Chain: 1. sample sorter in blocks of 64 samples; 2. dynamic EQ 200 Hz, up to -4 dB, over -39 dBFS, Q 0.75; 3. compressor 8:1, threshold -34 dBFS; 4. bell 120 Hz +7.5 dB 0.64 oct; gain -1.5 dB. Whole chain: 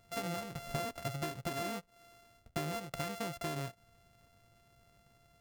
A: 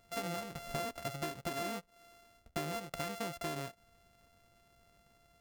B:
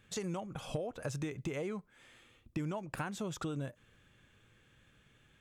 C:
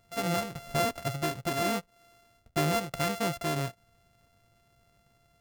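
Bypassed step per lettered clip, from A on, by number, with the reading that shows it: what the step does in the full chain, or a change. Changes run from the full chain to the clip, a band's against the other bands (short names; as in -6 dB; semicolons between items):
4, 125 Hz band -4.0 dB; 1, 250 Hz band +5.0 dB; 3, mean gain reduction 6.0 dB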